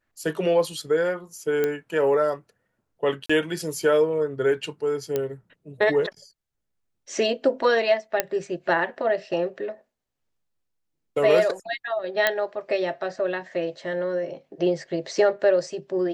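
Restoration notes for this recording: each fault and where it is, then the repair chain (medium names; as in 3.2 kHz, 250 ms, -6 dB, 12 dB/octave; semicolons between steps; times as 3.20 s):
1.64 s: pop -12 dBFS
3.26–3.29 s: dropout 35 ms
5.16 s: pop -12 dBFS
8.20 s: pop -5 dBFS
12.27 s: pop -5 dBFS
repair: de-click; interpolate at 3.26 s, 35 ms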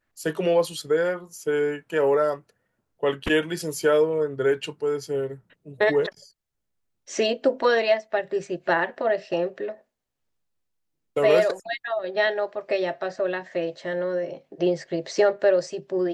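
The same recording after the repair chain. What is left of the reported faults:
nothing left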